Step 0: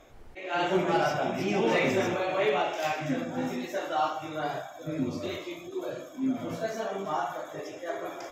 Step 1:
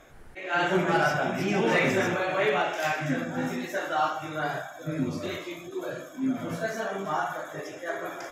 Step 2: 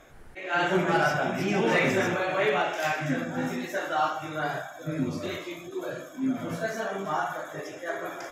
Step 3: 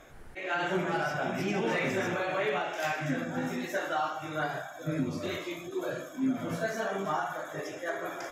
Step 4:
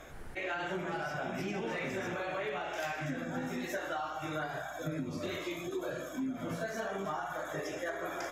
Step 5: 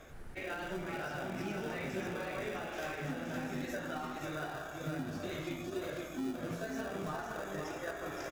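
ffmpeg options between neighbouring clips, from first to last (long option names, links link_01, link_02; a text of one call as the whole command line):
ffmpeg -i in.wav -af "equalizer=frequency=160:width_type=o:width=0.67:gain=5,equalizer=frequency=1600:width_type=o:width=0.67:gain=8,equalizer=frequency=10000:width_type=o:width=0.67:gain=9" out.wav
ffmpeg -i in.wav -af anull out.wav
ffmpeg -i in.wav -af "alimiter=limit=-21dB:level=0:latency=1:release=450" out.wav
ffmpeg -i in.wav -af "acompressor=threshold=-37dB:ratio=6,aeval=exprs='val(0)+0.000501*(sin(2*PI*60*n/s)+sin(2*PI*2*60*n/s)/2+sin(2*PI*3*60*n/s)/3+sin(2*PI*4*60*n/s)/4+sin(2*PI*5*60*n/s)/5)':channel_layout=same,volume=3dB" out.wav
ffmpeg -i in.wav -filter_complex "[0:a]asplit=2[link_01][link_02];[link_02]acrusher=samples=41:mix=1:aa=0.000001,volume=-7dB[link_03];[link_01][link_03]amix=inputs=2:normalize=0,aecho=1:1:516:0.562,volume=-5dB" out.wav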